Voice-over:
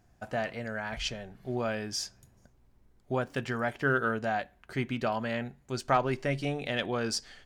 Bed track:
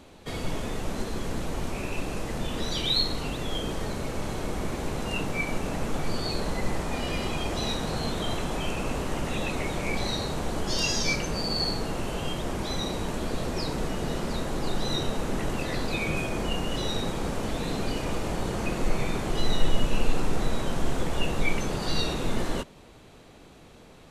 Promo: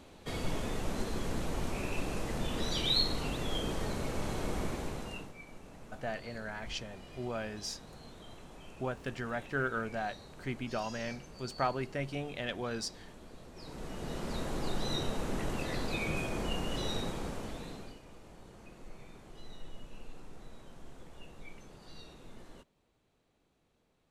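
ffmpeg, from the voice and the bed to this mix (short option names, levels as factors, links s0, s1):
-filter_complex "[0:a]adelay=5700,volume=0.501[s0];[1:a]volume=3.76,afade=t=out:st=4.59:d=0.75:silence=0.133352,afade=t=in:st=13.54:d=0.91:silence=0.16788,afade=t=out:st=16.94:d=1.06:silence=0.125893[s1];[s0][s1]amix=inputs=2:normalize=0"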